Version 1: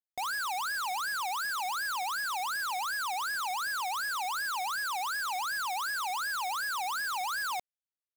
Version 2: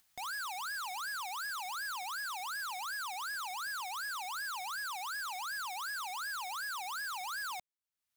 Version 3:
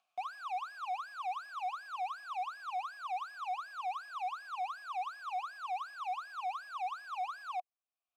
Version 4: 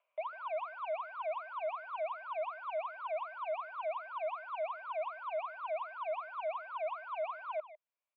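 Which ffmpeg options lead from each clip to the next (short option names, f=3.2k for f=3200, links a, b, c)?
-af "equalizer=f=420:w=1.3:g=-12.5,acompressor=mode=upward:threshold=-43dB:ratio=2.5,volume=-5dB"
-filter_complex "[0:a]asplit=3[a][b][c];[a]bandpass=f=730:t=q:w=8,volume=0dB[d];[b]bandpass=f=1.09k:t=q:w=8,volume=-6dB[e];[c]bandpass=f=2.44k:t=q:w=8,volume=-9dB[f];[d][e][f]amix=inputs=3:normalize=0,volume=9.5dB"
-filter_complex "[0:a]asplit=2[a][b];[b]adelay=150,highpass=300,lowpass=3.4k,asoftclip=type=hard:threshold=-38.5dB,volume=-12dB[c];[a][c]amix=inputs=2:normalize=0,highpass=f=600:t=q:w=0.5412,highpass=f=600:t=q:w=1.307,lowpass=f=3k:t=q:w=0.5176,lowpass=f=3k:t=q:w=0.7071,lowpass=f=3k:t=q:w=1.932,afreqshift=-110,volume=1dB"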